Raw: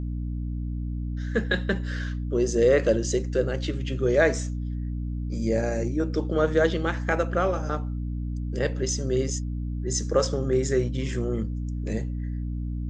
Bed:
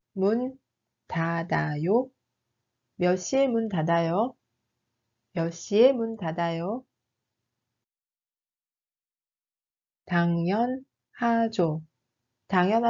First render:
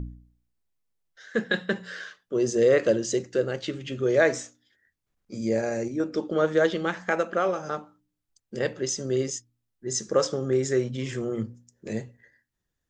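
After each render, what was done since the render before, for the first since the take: de-hum 60 Hz, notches 5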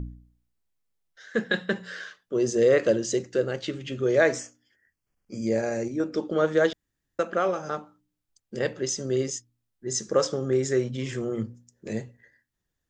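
4.39–5.47 Butterworth band-stop 3800 Hz, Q 3.8; 6.73–7.19 room tone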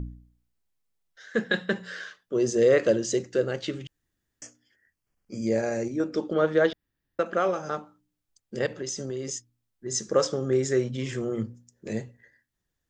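3.87–4.42 room tone; 6.33–7.26 bell 7100 Hz -11.5 dB 0.66 oct; 8.66–9.93 compressor 10:1, threshold -28 dBFS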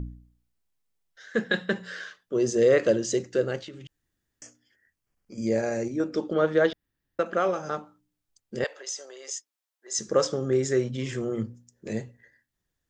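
3.62–5.38 compressor 3:1, threshold -41 dBFS; 8.64–9.99 HPF 570 Hz 24 dB/oct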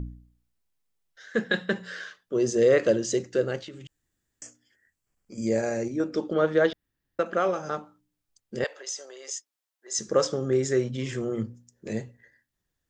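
3.71–5.72 bell 7600 Hz +8.5 dB 0.27 oct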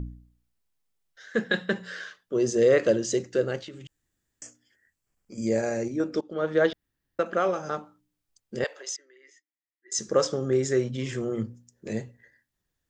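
6.21–6.62 fade in, from -19 dB; 8.96–9.92 double band-pass 780 Hz, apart 2.6 oct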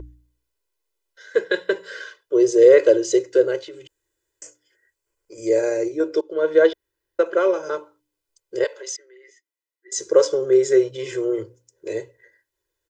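resonant low shelf 260 Hz -9 dB, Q 3; comb 2 ms, depth 92%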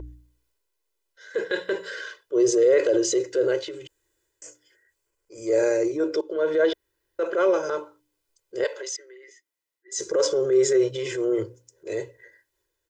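limiter -10.5 dBFS, peak gain reduction 8 dB; transient shaper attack -6 dB, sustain +4 dB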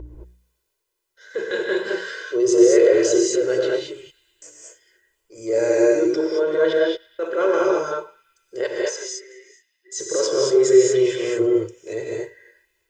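narrowing echo 0.11 s, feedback 78%, band-pass 2800 Hz, level -23 dB; non-linear reverb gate 0.25 s rising, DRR -3 dB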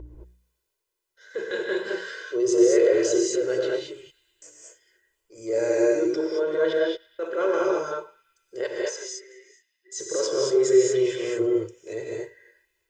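gain -4.5 dB

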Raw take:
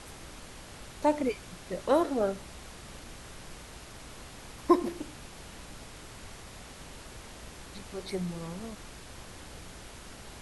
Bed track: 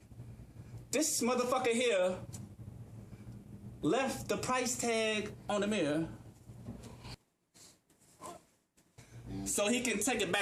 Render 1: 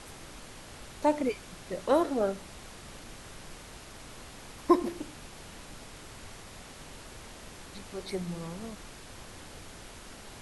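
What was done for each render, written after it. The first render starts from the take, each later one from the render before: de-hum 60 Hz, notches 3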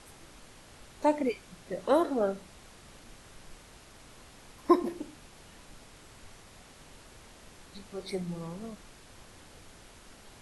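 noise print and reduce 6 dB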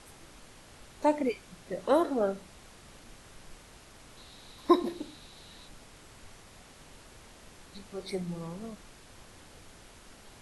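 4.17–5.68 bell 3900 Hz +13 dB 0.28 oct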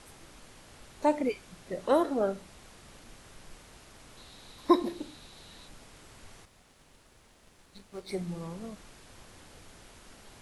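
6.45–8.1 G.711 law mismatch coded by A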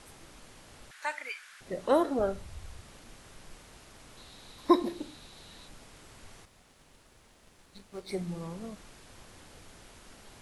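0.91–1.61 resonant high-pass 1600 Hz, resonance Q 3.3; 2.19–2.81 resonant low shelf 130 Hz +12 dB, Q 1.5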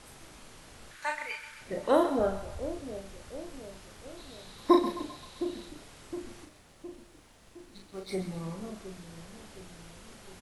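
doubler 37 ms -4.5 dB; split-band echo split 630 Hz, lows 0.714 s, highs 0.13 s, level -11 dB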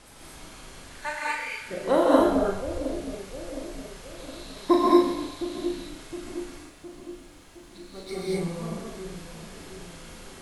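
non-linear reverb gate 0.26 s rising, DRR -5.5 dB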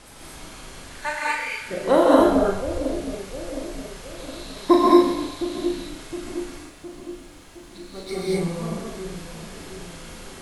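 gain +4.5 dB; limiter -3 dBFS, peak gain reduction 2 dB

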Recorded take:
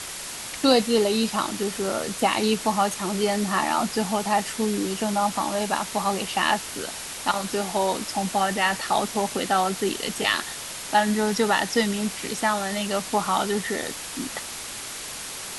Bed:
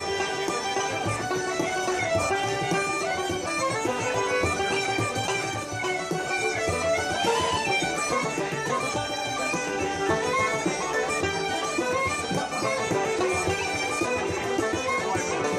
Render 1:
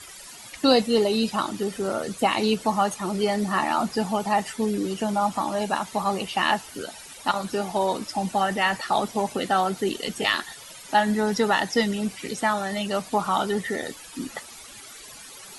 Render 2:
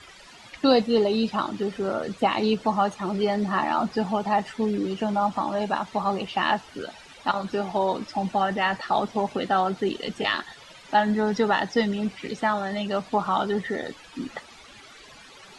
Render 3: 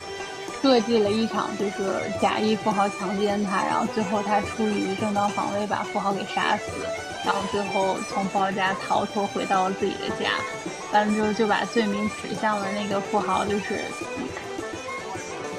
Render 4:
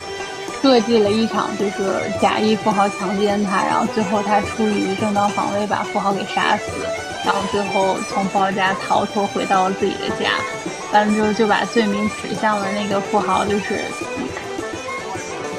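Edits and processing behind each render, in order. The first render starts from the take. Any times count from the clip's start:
denoiser 14 dB, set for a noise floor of -35 dBFS
LPF 3900 Hz 12 dB/oct; dynamic EQ 2300 Hz, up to -3 dB, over -37 dBFS, Q 1.5
add bed -6.5 dB
gain +6 dB; limiter -3 dBFS, peak gain reduction 1.5 dB

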